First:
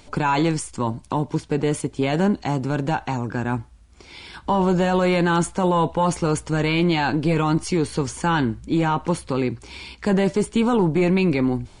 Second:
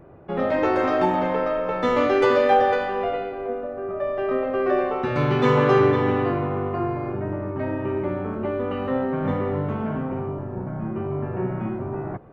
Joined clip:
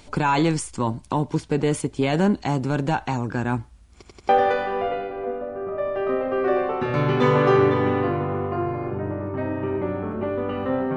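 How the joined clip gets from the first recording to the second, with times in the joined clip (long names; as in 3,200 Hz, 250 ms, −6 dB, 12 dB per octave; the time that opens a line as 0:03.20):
first
0:03.93: stutter in place 0.09 s, 4 plays
0:04.29: continue with second from 0:02.51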